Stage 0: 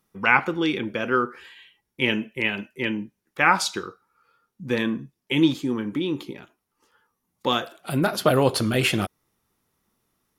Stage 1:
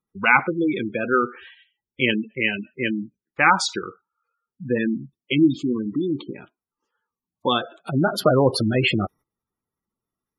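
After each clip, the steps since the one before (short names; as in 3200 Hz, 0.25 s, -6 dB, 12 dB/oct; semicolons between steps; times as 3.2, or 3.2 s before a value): gate -46 dBFS, range -15 dB; spectral gate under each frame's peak -15 dB strong; gain +2.5 dB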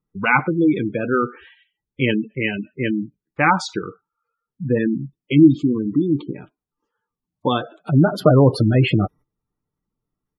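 tilt -2.5 dB/oct; comb 6.7 ms, depth 31%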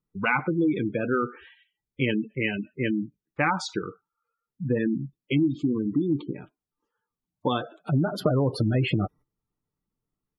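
compressor 10:1, threshold -15 dBFS, peak gain reduction 10 dB; gain -4 dB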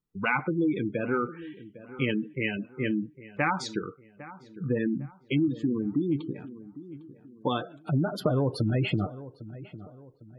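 darkening echo 0.804 s, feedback 40%, low-pass 1500 Hz, level -16 dB; gain -2.5 dB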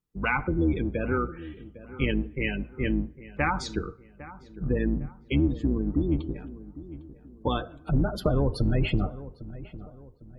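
octaver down 2 oct, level 0 dB; on a send at -22.5 dB: reverb RT60 1.0 s, pre-delay 3 ms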